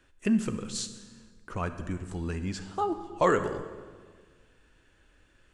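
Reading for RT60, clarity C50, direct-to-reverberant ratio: 1.6 s, 10.5 dB, 9.5 dB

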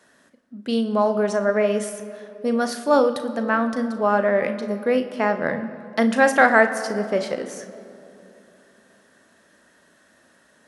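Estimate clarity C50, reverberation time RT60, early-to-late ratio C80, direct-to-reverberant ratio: 10.5 dB, 2.9 s, 12.5 dB, 8.0 dB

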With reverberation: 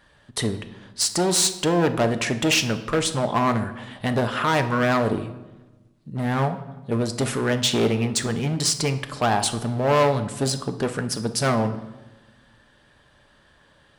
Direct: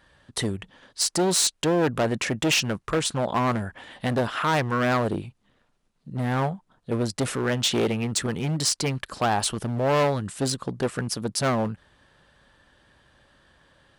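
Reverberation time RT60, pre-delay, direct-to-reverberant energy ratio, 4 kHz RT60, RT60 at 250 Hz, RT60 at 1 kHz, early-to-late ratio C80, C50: 1.1 s, 5 ms, 7.5 dB, 0.80 s, 1.6 s, 1.1 s, 14.5 dB, 12.0 dB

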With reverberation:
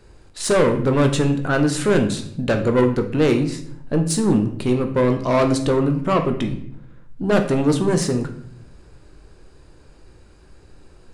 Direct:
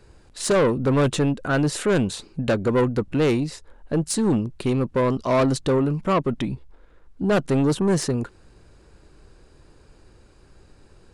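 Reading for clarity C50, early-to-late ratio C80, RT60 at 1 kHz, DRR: 10.0 dB, 13.5 dB, 0.55 s, 5.0 dB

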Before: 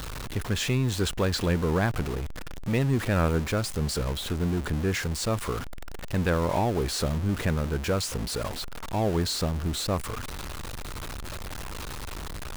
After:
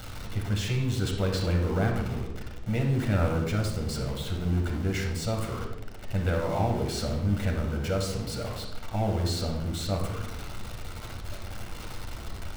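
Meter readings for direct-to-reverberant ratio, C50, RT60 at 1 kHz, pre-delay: 0.0 dB, 4.5 dB, 0.80 s, 10 ms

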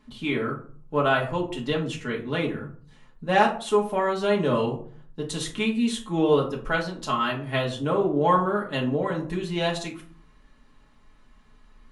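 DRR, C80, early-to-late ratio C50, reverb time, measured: -3.5 dB, 14.5 dB, 10.0 dB, 0.50 s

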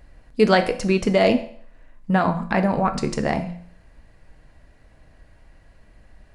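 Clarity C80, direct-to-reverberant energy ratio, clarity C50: 16.0 dB, 6.5 dB, 12.5 dB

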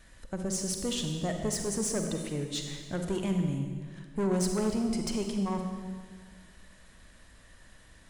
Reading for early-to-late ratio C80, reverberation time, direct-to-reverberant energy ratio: 6.0 dB, 1.7 s, 4.0 dB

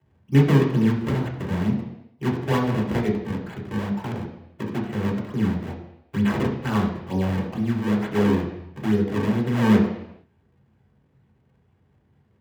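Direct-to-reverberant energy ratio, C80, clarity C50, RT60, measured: -2.5 dB, 8.5 dB, 6.0 dB, 0.80 s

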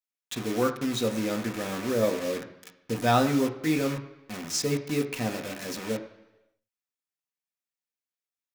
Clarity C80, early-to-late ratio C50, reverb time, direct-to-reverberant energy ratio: 13.5 dB, 11.5 dB, 1.0 s, 4.0 dB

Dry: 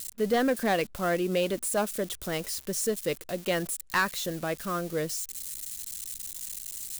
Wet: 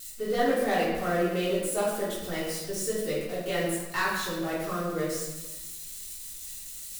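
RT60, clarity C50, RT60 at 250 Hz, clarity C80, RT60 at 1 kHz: 1.1 s, 0.5 dB, 1.3 s, 3.5 dB, 1.2 s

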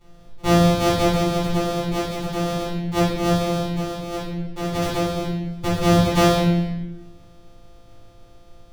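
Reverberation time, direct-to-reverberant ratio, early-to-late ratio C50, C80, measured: 1.0 s, -8.5 dB, 0.5 dB, 3.0 dB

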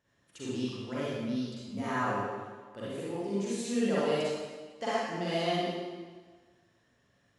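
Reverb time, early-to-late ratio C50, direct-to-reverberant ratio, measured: 1.4 s, -6.0 dB, -9.5 dB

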